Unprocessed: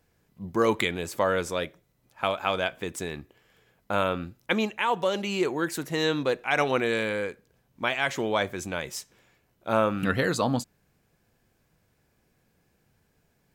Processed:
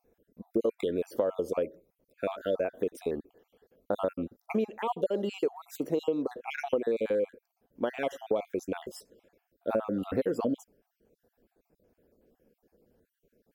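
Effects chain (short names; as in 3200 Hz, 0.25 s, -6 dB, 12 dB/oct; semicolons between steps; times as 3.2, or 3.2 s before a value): random spectral dropouts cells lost 45%; graphic EQ 125/250/500/1000/2000/4000/8000 Hz -11/+6/+11/-7/-8/-7/-10 dB; compressor 6:1, threshold -25 dBFS, peak gain reduction 12.5 dB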